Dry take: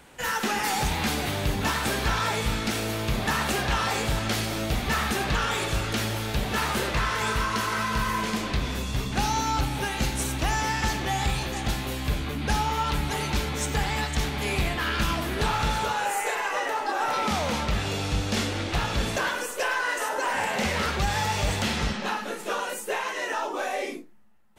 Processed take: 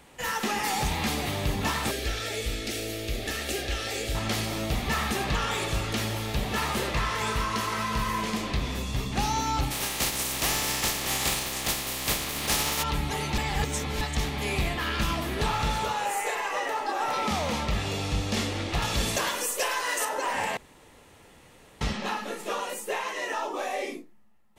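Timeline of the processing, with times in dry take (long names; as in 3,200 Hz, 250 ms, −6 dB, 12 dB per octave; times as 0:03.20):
0:01.91–0:04.15: phaser with its sweep stopped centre 410 Hz, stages 4
0:09.70–0:12.82: compressing power law on the bin magnitudes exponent 0.33
0:13.38–0:14.01: reverse
0:18.82–0:20.05: high-shelf EQ 4,600 Hz +10.5 dB
0:20.57–0:21.81: fill with room tone
whole clip: notch filter 1,500 Hz, Q 8.4; level −1.5 dB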